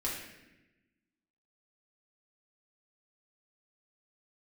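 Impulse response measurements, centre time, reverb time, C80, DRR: 57 ms, 1.0 s, 5.0 dB, -6.0 dB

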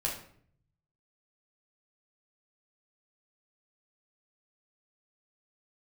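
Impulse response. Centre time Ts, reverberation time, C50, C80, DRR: 29 ms, 0.60 s, 6.0 dB, 10.0 dB, -2.0 dB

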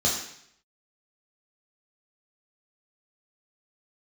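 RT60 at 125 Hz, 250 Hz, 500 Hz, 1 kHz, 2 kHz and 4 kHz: 0.80, 0.65, 0.70, 0.70, 0.70, 0.70 s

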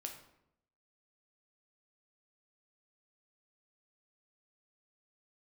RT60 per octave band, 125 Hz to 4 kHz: 0.90, 0.90, 0.85, 0.75, 0.65, 0.50 s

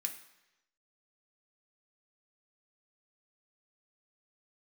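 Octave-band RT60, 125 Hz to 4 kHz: 0.90, 0.90, 1.0, 1.0, 1.0, 1.0 s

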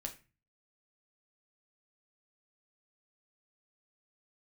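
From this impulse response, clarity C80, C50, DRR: 18.5 dB, 12.5 dB, 3.0 dB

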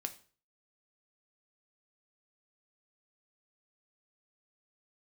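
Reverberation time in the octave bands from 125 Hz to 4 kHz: 0.50, 0.45, 0.40, 0.40, 0.40, 0.40 s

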